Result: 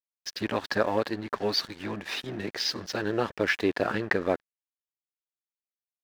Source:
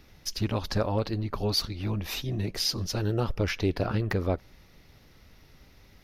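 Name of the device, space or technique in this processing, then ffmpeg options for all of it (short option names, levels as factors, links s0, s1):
pocket radio on a weak battery: -af "highpass=260,lowpass=4400,aeval=exprs='sgn(val(0))*max(abs(val(0))-0.00398,0)':c=same,equalizer=f=1700:t=o:w=0.35:g=9,volume=1.58"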